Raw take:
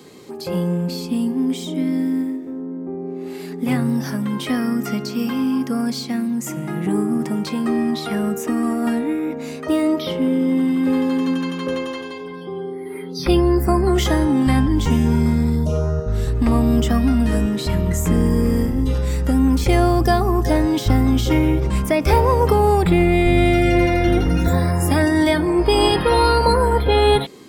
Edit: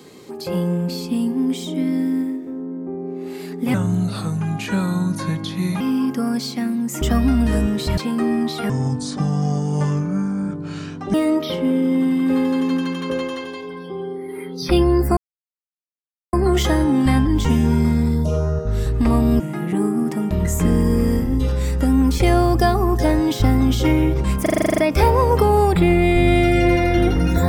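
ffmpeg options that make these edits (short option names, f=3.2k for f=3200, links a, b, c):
-filter_complex "[0:a]asplit=19[a][b][c][d][e][f][g][h][i][j][k][l][m][n][o][p][q][r][s];[a]atrim=end=3.744[t];[b]atrim=start=3.74:end=5.33,asetpts=PTS-STARTPTS,asetrate=33957,aresample=44100[u];[c]atrim=start=5.326:end=6.542[v];[d]atrim=start=16.808:end=17.772[w];[e]atrim=start=7.448:end=8.174[x];[f]atrim=start=8.17:end=9.71,asetpts=PTS-STARTPTS,asetrate=27783,aresample=44100[y];[g]atrim=start=9.706:end=13.74,asetpts=PTS-STARTPTS,afade=t=out:st=4.03:d=0.004:c=hsin,apad=pad_dur=1.16[z];[h]atrim=start=13.74:end=16.812,asetpts=PTS-STARTPTS,afade=t=in:d=0.004:c=hsin[aa];[i]atrim=start=6.538:end=7.452[ab];[j]atrim=start=17.768:end=21.922[ac];[k]atrim=start=21.878:end=21.922[ad];[l]atrim=start=21.878:end=21.922[ae];[m]atrim=start=21.878:end=21.922[af];[n]atrim=start=21.878:end=21.922[ag];[o]atrim=start=21.878:end=21.922[ah];[p]atrim=start=21.878:end=21.922[ai];[q]atrim=start=21.878:end=21.922[aj];[r]atrim=start=21.878:end=21.922[ak];[s]atrim=start=21.878[al];[t][u]acrossfade=d=0.004:c1=hsin:c2=hsin[am];[am][v]acrossfade=d=0.004:c1=hsin:c2=hsin[an];[an][w]acrossfade=d=0.004:c1=hsin:c2=hsin[ao];[ao][x]acrossfade=d=0.004:c1=hsin:c2=hsin[ap];[ap][y]acrossfade=d=0.004:c1=hsin:c2=hsin[aq];[z][aa]concat=n=2:v=0:a=1[ar];[aq][ar]acrossfade=d=0.004:c1=hsin:c2=hsin[as];[as][ab]acrossfade=d=0.004:c1=hsin:c2=hsin[at];[at][ac]acrossfade=d=0.004:c1=hsin:c2=hsin[au];[au][ad]acrossfade=d=0.004:c1=hsin:c2=hsin[av];[av][ae]acrossfade=d=0.004:c1=hsin:c2=hsin[aw];[aw][af]acrossfade=d=0.004:c1=hsin:c2=hsin[ax];[ax][ag]acrossfade=d=0.004:c1=hsin:c2=hsin[ay];[ay][ah]acrossfade=d=0.004:c1=hsin:c2=hsin[az];[az][ai]acrossfade=d=0.004:c1=hsin:c2=hsin[ba];[ba][aj]acrossfade=d=0.004:c1=hsin:c2=hsin[bb];[bb][ak]acrossfade=d=0.004:c1=hsin:c2=hsin[bc];[bc][al]acrossfade=d=0.004:c1=hsin:c2=hsin"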